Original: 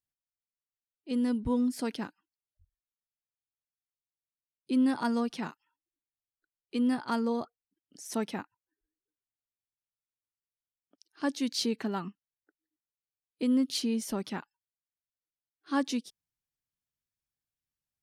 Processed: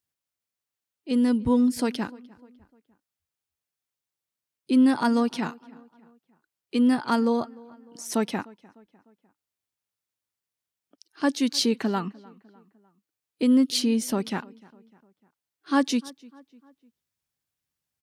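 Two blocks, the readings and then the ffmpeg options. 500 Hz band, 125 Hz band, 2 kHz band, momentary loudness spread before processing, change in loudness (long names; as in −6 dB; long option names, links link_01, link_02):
+7.0 dB, +7.0 dB, +7.0 dB, 13 LU, +7.0 dB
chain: -filter_complex "[0:a]highpass=63,asplit=2[link_01][link_02];[link_02]adelay=301,lowpass=frequency=2700:poles=1,volume=-23dB,asplit=2[link_03][link_04];[link_04]adelay=301,lowpass=frequency=2700:poles=1,volume=0.5,asplit=2[link_05][link_06];[link_06]adelay=301,lowpass=frequency=2700:poles=1,volume=0.5[link_07];[link_03][link_05][link_07]amix=inputs=3:normalize=0[link_08];[link_01][link_08]amix=inputs=2:normalize=0,volume=7dB"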